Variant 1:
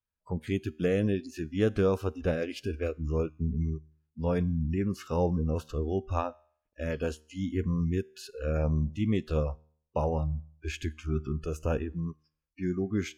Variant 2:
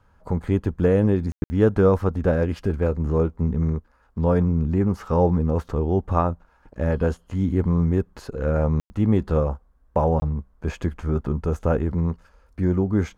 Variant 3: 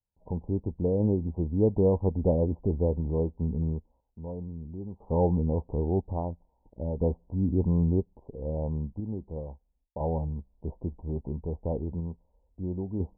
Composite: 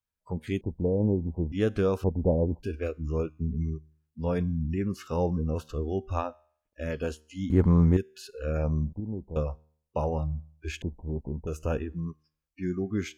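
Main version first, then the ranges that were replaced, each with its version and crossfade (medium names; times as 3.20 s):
1
0.61–1.52 s: from 3
2.04–2.63 s: from 3
7.50–7.97 s: from 2
8.93–9.36 s: from 3
10.82–11.47 s: from 3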